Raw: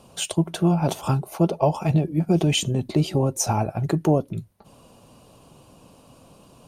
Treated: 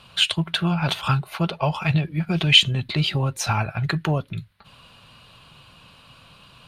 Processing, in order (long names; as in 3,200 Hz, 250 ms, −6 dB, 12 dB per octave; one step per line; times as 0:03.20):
drawn EQ curve 140 Hz 0 dB, 300 Hz −11 dB, 770 Hz −5 dB, 1,500 Hz +11 dB, 4,100 Hz +11 dB, 5,900 Hz −6 dB
level +1 dB